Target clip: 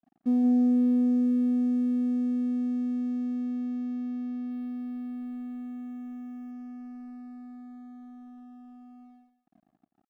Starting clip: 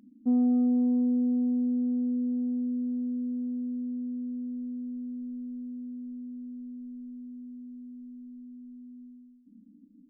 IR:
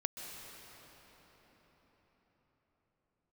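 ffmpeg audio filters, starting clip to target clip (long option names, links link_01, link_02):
-filter_complex "[0:a]asettb=1/sr,asplit=3[link_01][link_02][link_03];[link_01]atrim=end=4.514[link_04];[link_02]atrim=start=4.51:end=6.51,asetpts=PTS-STARTPTS,afade=type=in:duration=0.004:curve=qsin,afade=type=out:start_time=1.996:duration=0.004:curve=qsin,aemphasis=mode=production:type=50kf[link_05];[link_03]atrim=start=6.506[link_06];[link_04][link_05]acrossfade=duration=0.004:curve1=hsin:curve2=qsin[link_07];[link_07][link_06]acrossfade=duration=0.004:curve1=qsin:curve2=hsin,aeval=exprs='sgn(val(0))*max(abs(val(0))-0.00266,0)':channel_layout=same,aecho=1:1:174:0.266"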